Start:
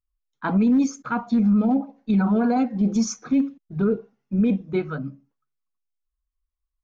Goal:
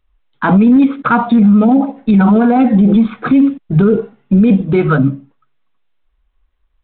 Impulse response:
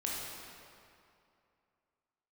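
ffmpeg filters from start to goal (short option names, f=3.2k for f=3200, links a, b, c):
-filter_complex "[0:a]asettb=1/sr,asplit=3[a][b][c];[a]atrim=end=0.764[d];[b]atrim=start=0.76:end=1.97,asetpts=PTS-STARTPTS,afade=t=in:d=0.004:c=qsin,afade=t=out:st=1.206:d=0.004:c=qsin,lowshelf=f=85:g=-7.5[e];[c]atrim=start=1.966[f];[d][e]acrossfade=d=0.004:c1=hsin:c2=qsin[g];[g][f]acrossfade=d=0.004:c1=qsin:c2=hsin,alimiter=level_in=23.5dB:limit=-1dB:release=50:level=0:latency=1,volume=-2.5dB" -ar 8000 -c:a adpcm_g726 -b:a 32k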